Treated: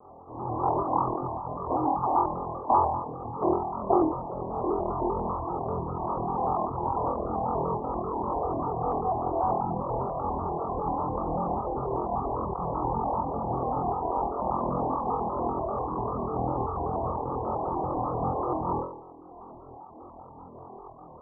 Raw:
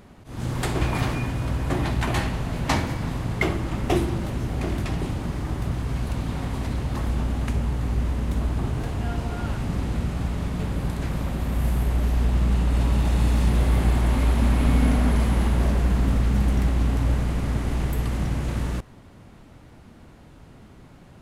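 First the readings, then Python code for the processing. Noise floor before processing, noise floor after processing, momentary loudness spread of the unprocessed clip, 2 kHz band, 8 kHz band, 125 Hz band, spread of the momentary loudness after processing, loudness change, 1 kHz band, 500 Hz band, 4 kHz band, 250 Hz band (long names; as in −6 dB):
−48 dBFS, −47 dBFS, 7 LU, below −30 dB, below −40 dB, −13.5 dB, 14 LU, −4.5 dB, +8.5 dB, +3.5 dB, below −40 dB, −5.5 dB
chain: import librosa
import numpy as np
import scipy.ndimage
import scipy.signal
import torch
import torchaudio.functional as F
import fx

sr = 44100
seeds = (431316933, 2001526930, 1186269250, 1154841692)

p1 = scipy.signal.sosfilt(scipy.signal.butter(16, 1100.0, 'lowpass', fs=sr, output='sos'), x)
p2 = fx.tilt_eq(p1, sr, slope=4.0)
p3 = p2 + fx.room_flutter(p2, sr, wall_m=4.1, rt60_s=1.3, dry=0)
p4 = fx.rider(p3, sr, range_db=10, speed_s=2.0)
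p5 = fx.dereverb_blind(p4, sr, rt60_s=1.0)
p6 = fx.low_shelf(p5, sr, hz=370.0, db=-10.0)
p7 = p6 + 0.34 * np.pad(p6, (int(2.5 * sr / 1000.0), 0))[:len(p6)]
p8 = fx.vibrato_shape(p7, sr, shape='square', rate_hz=5.1, depth_cents=100.0)
y = F.gain(torch.from_numpy(p8), 7.5).numpy()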